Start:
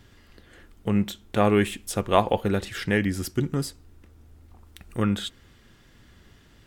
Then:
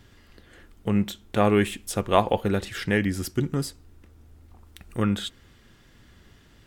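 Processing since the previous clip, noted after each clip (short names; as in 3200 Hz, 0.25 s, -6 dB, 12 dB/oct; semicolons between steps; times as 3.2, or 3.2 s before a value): nothing audible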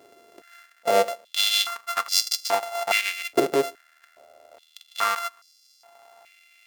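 sample sorter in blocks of 64 samples; stepped high-pass 2.4 Hz 390–4900 Hz; gain +1 dB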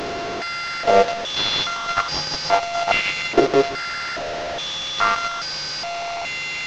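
delta modulation 32 kbps, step -27 dBFS; gain +6 dB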